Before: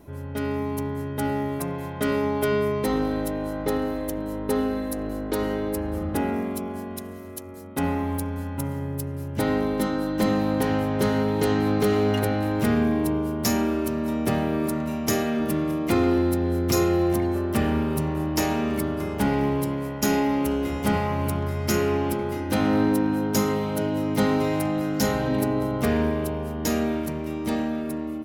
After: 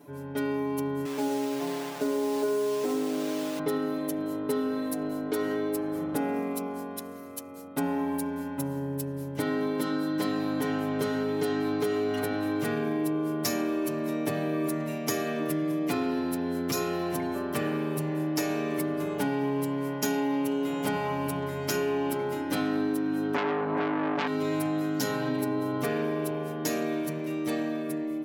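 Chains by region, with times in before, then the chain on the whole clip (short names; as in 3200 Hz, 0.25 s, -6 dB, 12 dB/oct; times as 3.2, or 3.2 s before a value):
1.05–3.59 Butterworth band-pass 480 Hz, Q 0.64 + requantised 6-bit, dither none
23.34–24.27 LPF 2200 Hz + bell 360 Hz +11.5 dB 2.9 oct + core saturation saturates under 2000 Hz
whole clip: comb 6.9 ms, depth 99%; compressor, threshold -20 dBFS; HPF 170 Hz 12 dB/oct; gain -4 dB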